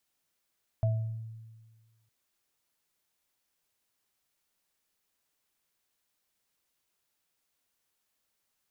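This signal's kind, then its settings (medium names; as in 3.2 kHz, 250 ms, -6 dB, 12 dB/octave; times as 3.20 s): sine partials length 1.26 s, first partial 112 Hz, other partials 655 Hz, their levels -8.5 dB, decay 1.55 s, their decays 0.50 s, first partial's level -22.5 dB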